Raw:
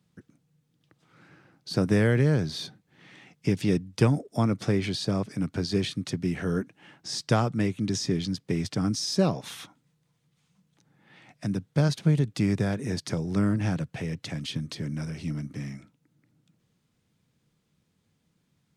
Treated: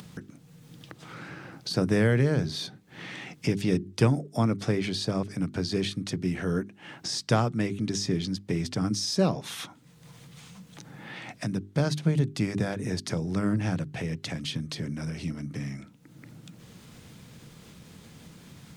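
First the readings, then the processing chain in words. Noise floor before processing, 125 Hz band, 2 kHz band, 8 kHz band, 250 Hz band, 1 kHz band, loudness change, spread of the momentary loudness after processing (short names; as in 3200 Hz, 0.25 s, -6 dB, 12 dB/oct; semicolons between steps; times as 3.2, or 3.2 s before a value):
-73 dBFS, -1.5 dB, +0.5 dB, +1.0 dB, -1.0 dB, 0.0 dB, -1.0 dB, 19 LU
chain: upward compressor, threshold -28 dBFS; notches 50/100/150/200/250/300/350/400 Hz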